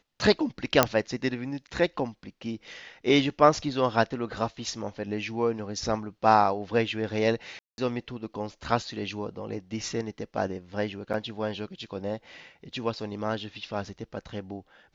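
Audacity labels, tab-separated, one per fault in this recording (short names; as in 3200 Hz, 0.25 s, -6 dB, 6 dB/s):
0.830000	0.830000	pop -2 dBFS
7.590000	7.780000	gap 0.191 s
11.130000	11.140000	gap 7.6 ms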